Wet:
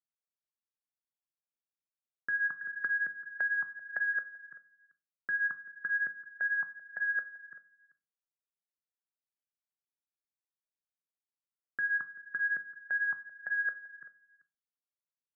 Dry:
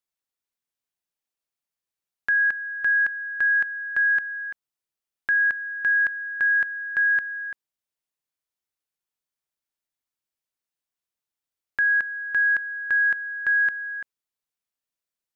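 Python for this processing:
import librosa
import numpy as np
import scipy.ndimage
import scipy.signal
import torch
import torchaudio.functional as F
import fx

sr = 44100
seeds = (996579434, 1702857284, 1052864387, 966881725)

p1 = scipy.signal.sosfilt(scipy.signal.ellip(3, 1.0, 40, [140.0, 1400.0], 'bandpass', fs=sr, output='sos'), x)
p2 = fx.level_steps(p1, sr, step_db=16)
p3 = fx.phaser_stages(p2, sr, stages=6, low_hz=250.0, high_hz=1000.0, hz=4.0, feedback_pct=25)
p4 = p3 + fx.echo_single(p3, sr, ms=387, db=-19.5, dry=0)
p5 = fx.room_shoebox(p4, sr, seeds[0], volume_m3=250.0, walls='furnished', distance_m=0.43)
y = fx.band_squash(p5, sr, depth_pct=70, at=(2.61, 4.14))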